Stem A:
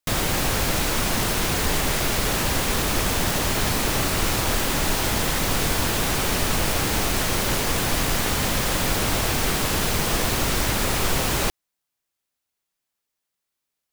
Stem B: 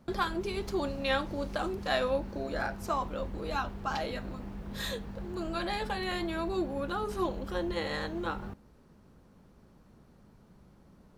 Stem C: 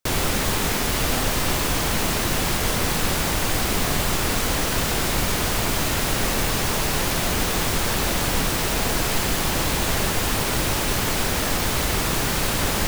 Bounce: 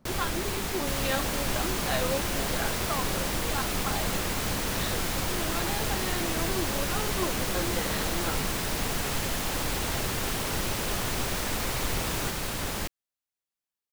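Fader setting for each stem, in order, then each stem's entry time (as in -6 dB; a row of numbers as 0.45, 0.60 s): -11.0, -1.5, -9.5 dB; 0.80, 0.00, 0.00 s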